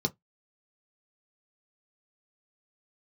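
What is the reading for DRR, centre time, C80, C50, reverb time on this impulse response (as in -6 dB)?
3.0 dB, 4 ms, 42.0 dB, 28.5 dB, 0.15 s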